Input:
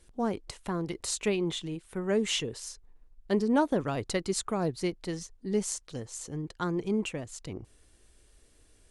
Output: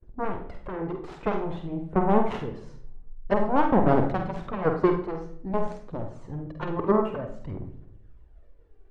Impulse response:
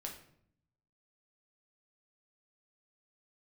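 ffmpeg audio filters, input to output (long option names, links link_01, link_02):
-filter_complex "[0:a]agate=range=-33dB:threshold=-54dB:ratio=3:detection=peak,aphaser=in_gain=1:out_gain=1:delay=2.7:decay=0.59:speed=0.51:type=triangular,aeval=exprs='0.211*(cos(1*acos(clip(val(0)/0.211,-1,1)))-cos(1*PI/2))+0.0596*(cos(7*acos(clip(val(0)/0.211,-1,1)))-cos(7*PI/2))':channel_layout=same,lowpass=1100,asplit=2[link_01][link_02];[1:a]atrim=start_sample=2205,adelay=48[link_03];[link_02][link_03]afir=irnorm=-1:irlink=0,volume=-2dB[link_04];[link_01][link_04]amix=inputs=2:normalize=0,volume=5dB"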